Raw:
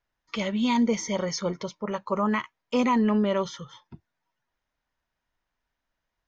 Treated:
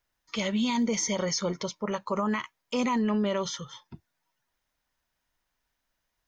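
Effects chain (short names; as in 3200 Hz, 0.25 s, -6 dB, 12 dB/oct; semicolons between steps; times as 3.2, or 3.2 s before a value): high shelf 4400 Hz +10.5 dB; limiter -19.5 dBFS, peak gain reduction 6.5 dB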